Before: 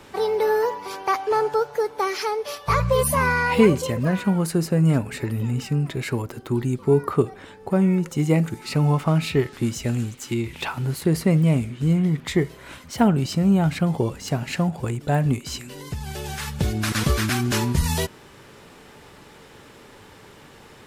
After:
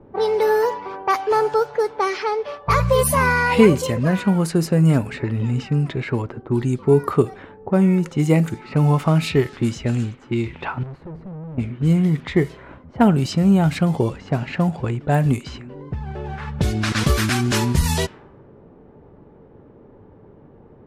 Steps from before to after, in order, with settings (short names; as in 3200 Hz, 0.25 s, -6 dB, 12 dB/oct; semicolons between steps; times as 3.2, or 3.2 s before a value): 10.83–11.58 tube stage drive 35 dB, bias 0.65; low-pass opened by the level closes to 460 Hz, open at -17.5 dBFS; gain +3 dB